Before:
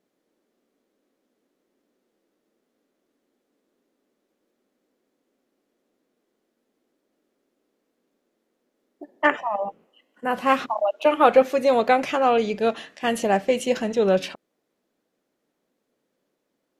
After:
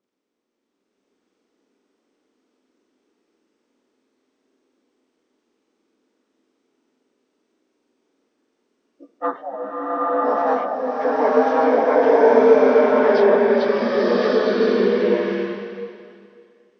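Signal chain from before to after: inharmonic rescaling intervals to 80%; bloom reverb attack 1.11 s, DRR -8.5 dB; gain -2.5 dB

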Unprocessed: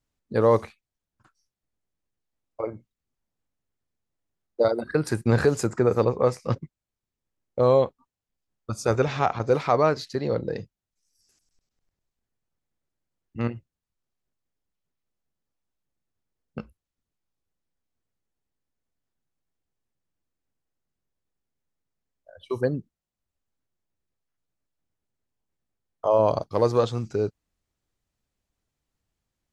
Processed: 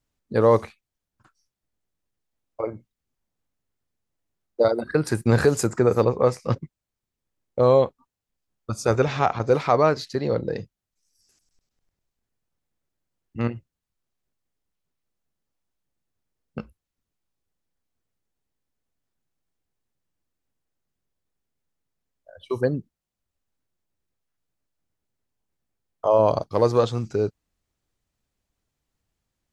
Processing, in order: 5.15–6.02 high shelf 9200 Hz +9.5 dB; gain +2 dB

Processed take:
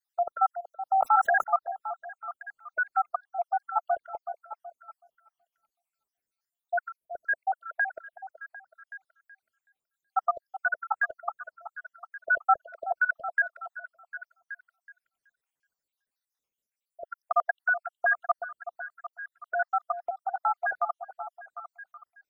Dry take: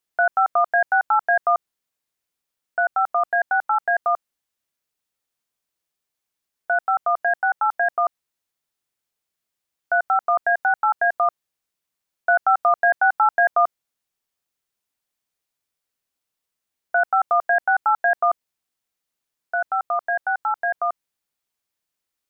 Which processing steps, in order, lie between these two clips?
random spectral dropouts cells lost 74%; delay with a stepping band-pass 0.375 s, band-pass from 630 Hz, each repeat 0.7 oct, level -9.5 dB; 0.87–1.44 sustainer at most 24 dB/s; gain -2 dB

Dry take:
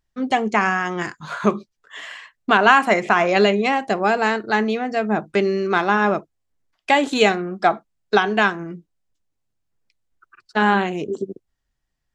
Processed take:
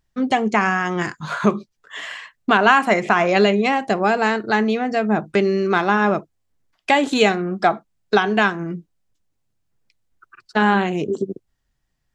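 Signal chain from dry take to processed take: bell 140 Hz +3.5 dB 1.5 oct; in parallel at 0 dB: compressor, threshold -23 dBFS, peak gain reduction 14 dB; on the sum: gain -2.5 dB

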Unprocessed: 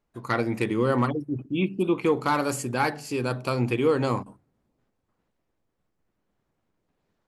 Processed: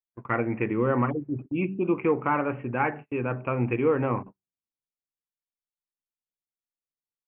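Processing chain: steep low-pass 2700 Hz 72 dB/oct; de-hum 190.9 Hz, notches 2; gate -37 dBFS, range -34 dB; gain -1 dB

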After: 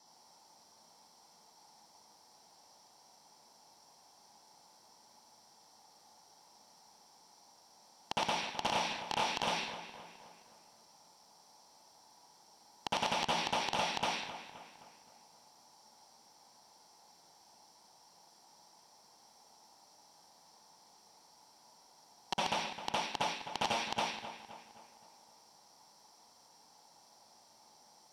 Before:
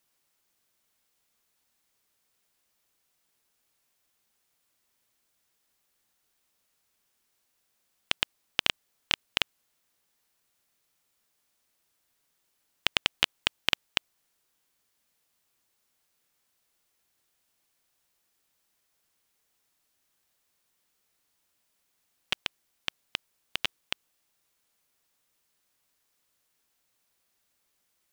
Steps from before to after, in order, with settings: in parallel at -2 dB: level quantiser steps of 22 dB; on the sum: reverb RT60 0.40 s, pre-delay 57 ms, DRR 1.5 dB; compressor 10:1, threshold -26 dBFS, peak gain reduction 17.5 dB; HPF 220 Hz 6 dB/oct; high shelf 4800 Hz +10.5 dB; soft clip -28 dBFS, distortion -1 dB; LPF 7400 Hz 12 dB/oct; bell 840 Hz +11.5 dB 0.62 oct; on a send: darkening echo 0.261 s, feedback 50%, low-pass 3500 Hz, level -11 dB

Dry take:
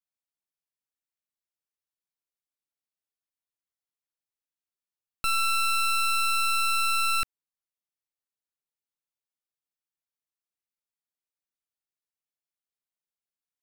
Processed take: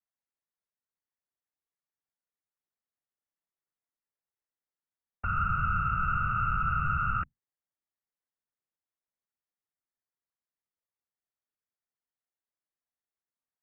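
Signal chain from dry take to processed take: elliptic low-pass 2000 Hz, stop band 50 dB; bell 91 Hz +4.5 dB 0.25 oct; whisperiser

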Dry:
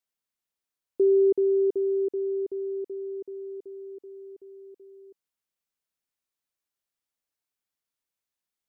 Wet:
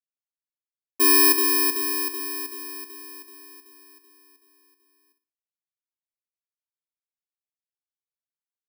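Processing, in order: FFT order left unsorted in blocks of 64 samples; low shelf 260 Hz -7 dB; flutter echo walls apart 9.9 m, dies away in 0.41 s; three-band expander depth 70%

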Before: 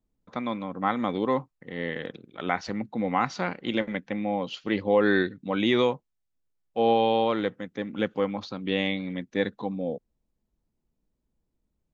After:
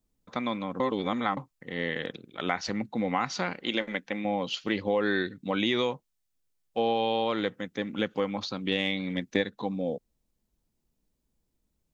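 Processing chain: 3.61–4.25 bell 100 Hz -11 dB 1.8 oct; 8.71–9.44 transient shaper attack +8 dB, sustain +2 dB; high shelf 2700 Hz +8.5 dB; 0.8–1.37 reverse; compressor 3:1, threshold -24 dBFS, peak gain reduction 8.5 dB

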